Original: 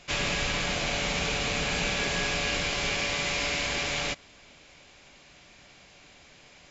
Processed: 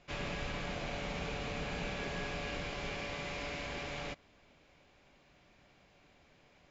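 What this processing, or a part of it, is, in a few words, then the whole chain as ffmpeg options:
through cloth: -af "lowpass=6.9k,highshelf=f=2.1k:g=-11,volume=-7dB"

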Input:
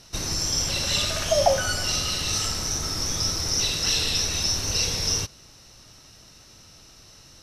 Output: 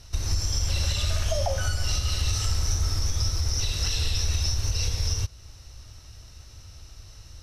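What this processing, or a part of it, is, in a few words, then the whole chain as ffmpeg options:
car stereo with a boomy subwoofer: -af "lowshelf=f=120:t=q:w=1.5:g=14,alimiter=limit=-13dB:level=0:latency=1:release=234,volume=-2.5dB"

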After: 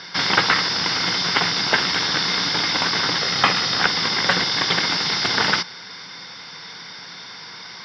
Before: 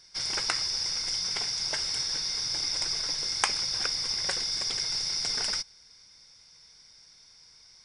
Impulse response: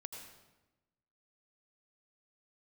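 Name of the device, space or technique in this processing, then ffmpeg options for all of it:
overdrive pedal into a guitar cabinet: -filter_complex "[0:a]asettb=1/sr,asplit=3[a][b][c];[a]atrim=end=3.214[d];[b]atrim=start=3.21:end=3.81,asetpts=PTS-STARTPTS,afade=t=in:d=0.004:c=qsin,afade=t=out:st=0.596:d=0.004:c=qsin,aecho=1:1:1.6:0.46,atrim=end_sample=26460[e];[c]atrim=start=3.806[f];[d][e]acrossfade=d=0.004:c1=hsin:c2=qsin[g];[g][f]acrossfade=d=0.004:c1=qsin:c2=hsin,asplit=2[h][i];[i]highpass=f=720:p=1,volume=35dB,asoftclip=type=tanh:threshold=-3dB[j];[h][j]amix=inputs=2:normalize=0,lowpass=f=3.4k:p=1,volume=-6dB,highpass=100,equalizer=f=120:t=q:w=4:g=5,equalizer=f=180:t=q:w=4:g=10,equalizer=f=280:t=q:w=4:g=4,equalizer=f=610:t=q:w=4:g=-5,equalizer=f=2.4k:t=q:w=4:g=-7,lowpass=f=3.7k:w=0.5412,lowpass=f=3.7k:w=1.3066,volume=3dB"

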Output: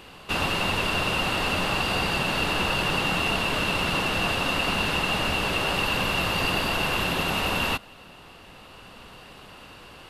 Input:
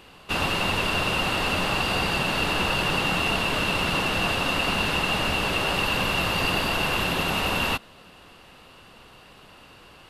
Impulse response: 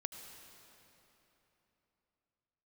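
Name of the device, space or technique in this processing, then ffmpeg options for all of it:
ducked reverb: -filter_complex "[0:a]asplit=3[a][b][c];[1:a]atrim=start_sample=2205[d];[b][d]afir=irnorm=-1:irlink=0[e];[c]apad=whole_len=445365[f];[e][f]sidechaincompress=threshold=-38dB:ratio=8:attack=16:release=1060,volume=0dB[g];[a][g]amix=inputs=2:normalize=0,volume=-1.5dB"

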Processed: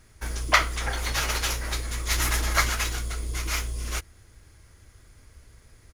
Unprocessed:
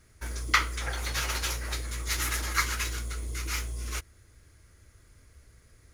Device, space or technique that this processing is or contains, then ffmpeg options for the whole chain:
octave pedal: -filter_complex "[0:a]asettb=1/sr,asplit=3[a][b][c];[a]atrim=end=2.114[d];[b]atrim=start=2.11:end=2.7,asetpts=PTS-STARTPTS,afade=t=in:d=0.004:c=qsin,afade=t=out:st=0.586:d=0.004:c=qsin,lowshelf=f=300:g=3.5[e];[c]atrim=start=2.696[f];[d][e]acrossfade=d=0.004:c1=hsin:c2=qsin[g];[g][f]acrossfade=d=0.004:c1=qsin:c2=hsin,asplit=2[h][i];[i]asetrate=22050,aresample=44100,atempo=2,volume=-8dB[j];[h][j]amix=inputs=2:normalize=0,volume=3.5dB"

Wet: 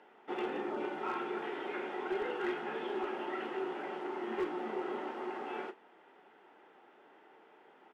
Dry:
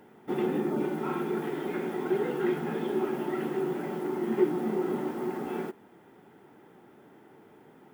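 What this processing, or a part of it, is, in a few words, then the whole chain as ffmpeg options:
megaphone: -filter_complex "[0:a]highpass=540,lowpass=3.8k,equalizer=f=2.8k:t=o:w=0.26:g=5,asoftclip=type=hard:threshold=-27.5dB,asplit=2[a][b];[b]adelay=31,volume=-12dB[c];[a][c]amix=inputs=2:normalize=0,volume=-1dB"

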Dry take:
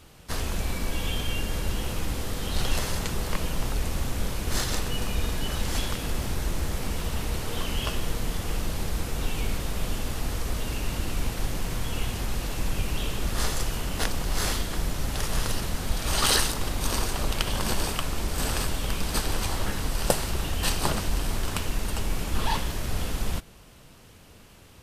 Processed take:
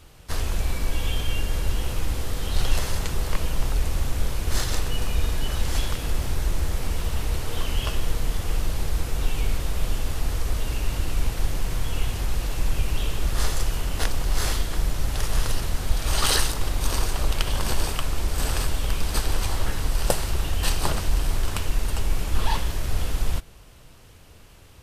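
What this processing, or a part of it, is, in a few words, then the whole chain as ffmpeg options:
low shelf boost with a cut just above: -af "lowshelf=f=87:g=6.5,equalizer=f=210:t=o:w=0.74:g=-5"

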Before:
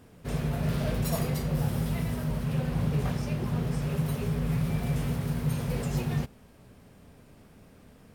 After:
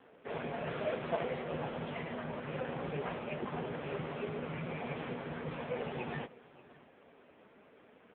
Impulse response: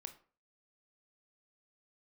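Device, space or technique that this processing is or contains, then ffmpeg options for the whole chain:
satellite phone: -af "highpass=400,lowpass=3.3k,aecho=1:1:585:0.0841,volume=3.5dB" -ar 8000 -c:a libopencore_amrnb -b:a 5900

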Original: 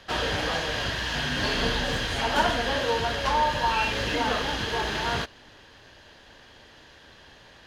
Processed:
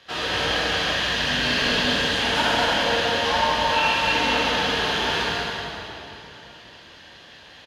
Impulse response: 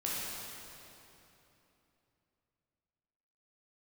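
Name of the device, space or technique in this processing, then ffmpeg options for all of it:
PA in a hall: -filter_complex "[0:a]highpass=f=120:p=1,equalizer=f=3.2k:t=o:w=1.6:g=5,aecho=1:1:187:0.473[a];[1:a]atrim=start_sample=2205[b];[a][b]afir=irnorm=-1:irlink=0,volume=-3dB"

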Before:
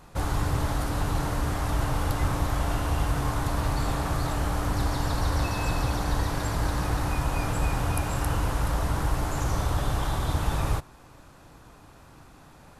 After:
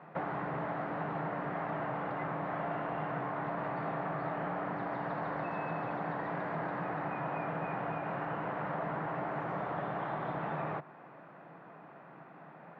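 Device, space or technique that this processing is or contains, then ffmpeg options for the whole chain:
bass amplifier: -af "highpass=f=170:w=0.5412,highpass=f=170:w=1.3066,acompressor=threshold=-34dB:ratio=6,highpass=63,equalizer=f=100:t=q:w=4:g=-7,equalizer=f=160:t=q:w=4:g=6,equalizer=f=260:t=q:w=4:g=-5,equalizer=f=670:t=q:w=4:g=6,equalizer=f=1.9k:t=q:w=4:g=3,lowpass=f=2.2k:w=0.5412,lowpass=f=2.2k:w=1.3066"

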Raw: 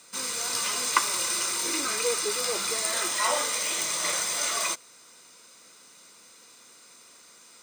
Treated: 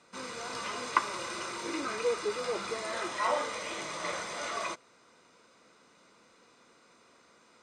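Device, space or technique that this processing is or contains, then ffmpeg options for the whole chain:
through cloth: -af "lowpass=7.2k,highshelf=f=2.9k:g=-17"

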